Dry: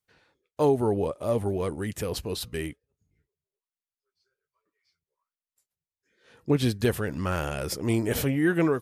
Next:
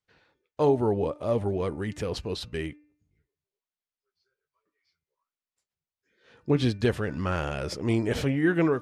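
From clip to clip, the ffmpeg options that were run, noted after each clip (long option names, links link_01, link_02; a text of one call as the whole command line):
ffmpeg -i in.wav -af "lowpass=5400,bandreject=frequency=298:width_type=h:width=4,bandreject=frequency=596:width_type=h:width=4,bandreject=frequency=894:width_type=h:width=4,bandreject=frequency=1192:width_type=h:width=4,bandreject=frequency=1490:width_type=h:width=4,bandreject=frequency=1788:width_type=h:width=4,bandreject=frequency=2086:width_type=h:width=4,bandreject=frequency=2384:width_type=h:width=4,bandreject=frequency=2682:width_type=h:width=4" out.wav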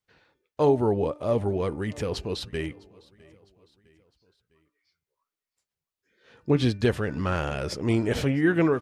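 ffmpeg -i in.wav -af "aecho=1:1:656|1312|1968:0.0631|0.0309|0.0151,volume=1.5dB" out.wav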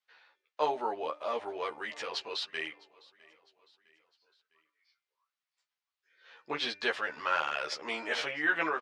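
ffmpeg -i in.wav -filter_complex "[0:a]asuperpass=centerf=2100:order=4:qfactor=0.5,asplit=2[link_01][link_02];[link_02]adelay=13,volume=-2dB[link_03];[link_01][link_03]amix=inputs=2:normalize=0" out.wav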